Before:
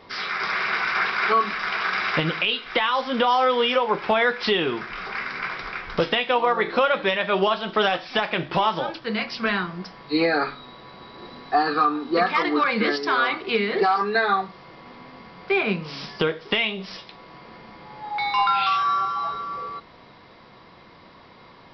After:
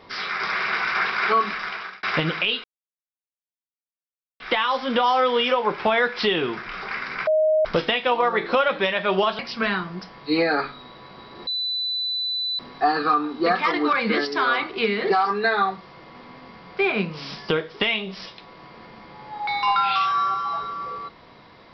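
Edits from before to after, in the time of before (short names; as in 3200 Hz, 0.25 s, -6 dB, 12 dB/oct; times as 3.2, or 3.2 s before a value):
1.5–2.03 fade out
2.64 insert silence 1.76 s
5.51–5.89 bleep 624 Hz -15.5 dBFS
7.63–9.22 cut
11.3 add tone 3990 Hz -23 dBFS 1.12 s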